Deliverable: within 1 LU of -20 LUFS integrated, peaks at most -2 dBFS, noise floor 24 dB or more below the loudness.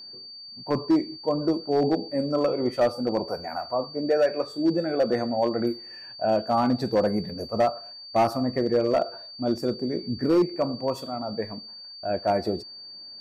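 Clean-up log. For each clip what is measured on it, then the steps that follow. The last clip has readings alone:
clipped samples 1.0%; clipping level -15.0 dBFS; steady tone 4.6 kHz; tone level -40 dBFS; loudness -26.0 LUFS; peak level -15.0 dBFS; loudness target -20.0 LUFS
-> clip repair -15 dBFS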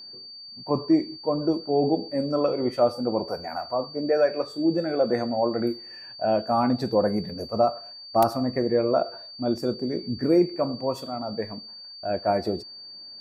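clipped samples 0.0%; steady tone 4.6 kHz; tone level -40 dBFS
-> band-stop 4.6 kHz, Q 30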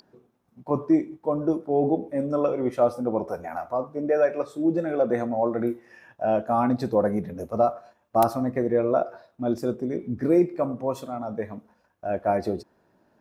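steady tone not found; loudness -25.5 LUFS; peak level -6.5 dBFS; loudness target -20.0 LUFS
-> trim +5.5 dB; peak limiter -2 dBFS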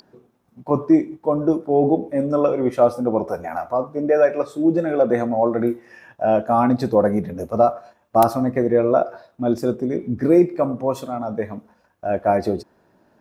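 loudness -20.0 LUFS; peak level -2.0 dBFS; noise floor -61 dBFS

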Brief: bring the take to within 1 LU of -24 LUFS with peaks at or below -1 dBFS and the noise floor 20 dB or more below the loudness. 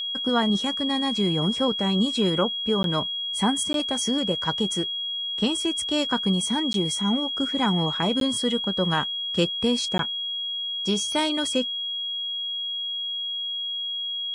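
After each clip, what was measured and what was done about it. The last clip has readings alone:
dropouts 5; longest dropout 12 ms; steady tone 3.3 kHz; tone level -27 dBFS; loudness -24.0 LUFS; peak level -9.5 dBFS; loudness target -24.0 LUFS
-> interpolate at 2.83/3.73/6.73/8.20/9.98 s, 12 ms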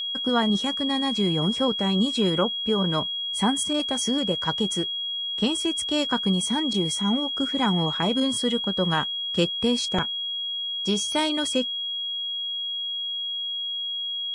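dropouts 0; steady tone 3.3 kHz; tone level -27 dBFS
-> band-stop 3.3 kHz, Q 30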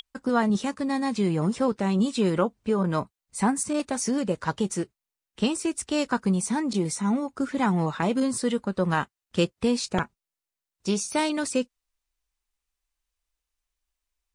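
steady tone not found; loudness -26.5 LUFS; peak level -10.0 dBFS; loudness target -24.0 LUFS
-> trim +2.5 dB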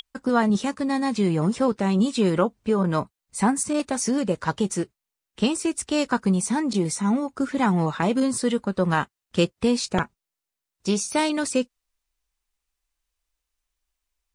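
loudness -24.0 LUFS; peak level -7.5 dBFS; noise floor -86 dBFS

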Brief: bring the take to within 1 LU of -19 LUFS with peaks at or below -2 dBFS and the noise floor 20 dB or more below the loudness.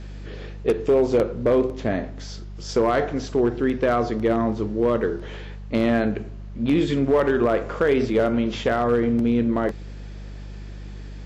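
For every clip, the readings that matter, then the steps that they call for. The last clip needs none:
clipped samples 0.6%; clipping level -12.0 dBFS; hum 50 Hz; highest harmonic 200 Hz; hum level -33 dBFS; loudness -22.0 LUFS; peak level -12.0 dBFS; loudness target -19.0 LUFS
-> clip repair -12 dBFS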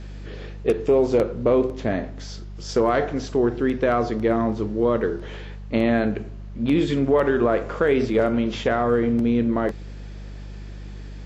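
clipped samples 0.0%; hum 50 Hz; highest harmonic 200 Hz; hum level -33 dBFS
-> de-hum 50 Hz, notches 4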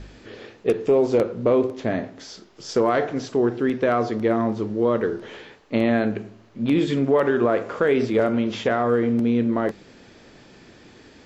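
hum not found; loudness -22.0 LUFS; peak level -7.5 dBFS; loudness target -19.0 LUFS
-> trim +3 dB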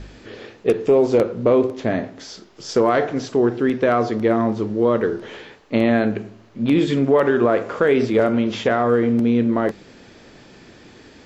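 loudness -19.0 LUFS; peak level -4.5 dBFS; noise floor -47 dBFS

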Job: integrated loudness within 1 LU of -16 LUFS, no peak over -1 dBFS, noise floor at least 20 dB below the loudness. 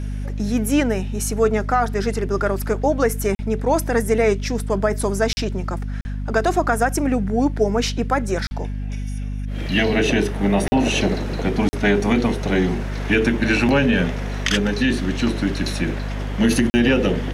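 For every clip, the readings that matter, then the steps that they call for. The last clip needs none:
dropouts 7; longest dropout 40 ms; hum 50 Hz; highest harmonic 250 Hz; hum level -23 dBFS; loudness -20.5 LUFS; peak level -5.0 dBFS; loudness target -16.0 LUFS
-> interpolate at 3.35/5.33/6.01/8.47/10.68/11.69/16.70 s, 40 ms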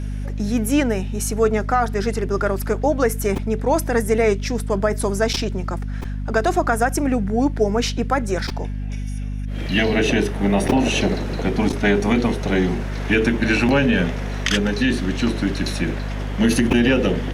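dropouts 0; hum 50 Hz; highest harmonic 250 Hz; hum level -23 dBFS
-> de-hum 50 Hz, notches 5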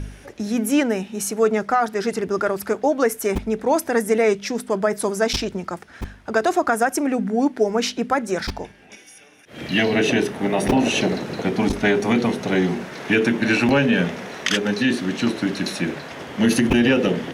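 hum not found; loudness -21.0 LUFS; peak level -4.0 dBFS; loudness target -16.0 LUFS
-> trim +5 dB; peak limiter -1 dBFS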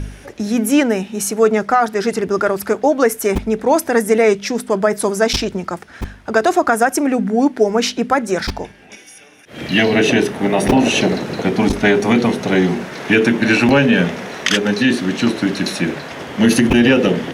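loudness -16.0 LUFS; peak level -1.0 dBFS; noise floor -41 dBFS

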